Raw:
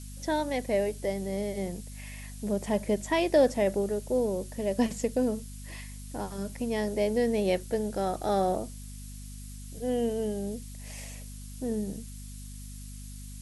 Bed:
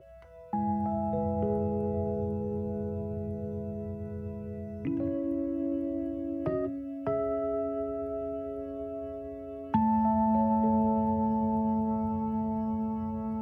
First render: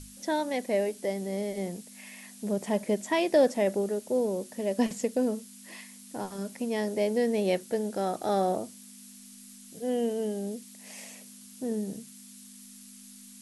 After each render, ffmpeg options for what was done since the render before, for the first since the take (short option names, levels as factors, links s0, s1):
-af "bandreject=f=50:t=h:w=6,bandreject=f=100:t=h:w=6,bandreject=f=150:t=h:w=6"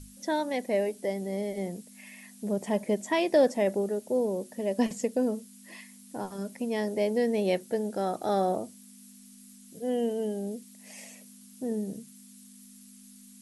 -af "afftdn=nr=6:nf=-50"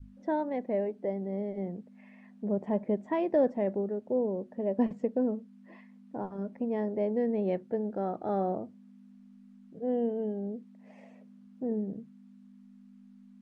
-af "lowpass=1100,adynamicequalizer=threshold=0.0126:dfrequency=630:dqfactor=0.71:tfrequency=630:tqfactor=0.71:attack=5:release=100:ratio=0.375:range=2.5:mode=cutabove:tftype=bell"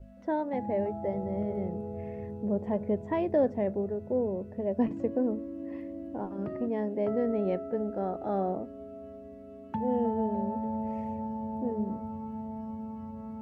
-filter_complex "[1:a]volume=0.422[s0];[0:a][s0]amix=inputs=2:normalize=0"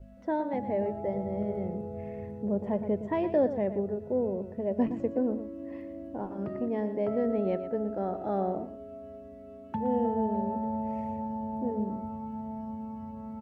-af "aecho=1:1:117:0.266"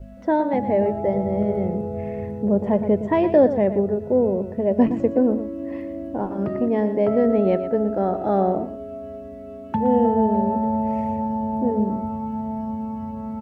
-af "volume=3.16"